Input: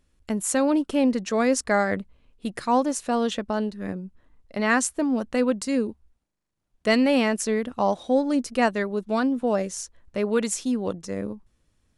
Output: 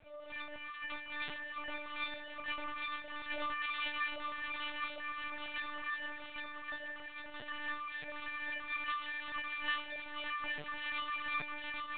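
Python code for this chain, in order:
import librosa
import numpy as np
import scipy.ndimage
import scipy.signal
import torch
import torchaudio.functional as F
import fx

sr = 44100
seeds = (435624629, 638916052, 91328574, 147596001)

y = fx.dmg_crackle(x, sr, seeds[0], per_s=260.0, level_db=-31.0)
y = fx.freq_invert(y, sr, carrier_hz=2700)
y = fx.low_shelf_res(y, sr, hz=670.0, db=10.5, q=1.5)
y = fx.over_compress(y, sr, threshold_db=-34.0, ratio=-1.0)
y = fx.noise_vocoder(y, sr, seeds[1], bands=4)
y = fx.peak_eq(y, sr, hz=130.0, db=13.0, octaves=1.4)
y = fx.hum_notches(y, sr, base_hz=60, count=10)
y = fx.comb_fb(y, sr, f0_hz=600.0, decay_s=0.43, harmonics='all', damping=0.0, mix_pct=100)
y = fx.echo_feedback(y, sr, ms=809, feedback_pct=44, wet_db=-3.0)
y = fx.lpc_vocoder(y, sr, seeds[2], excitation='pitch_kept', order=10)
y = y * librosa.db_to_amplitude(11.5)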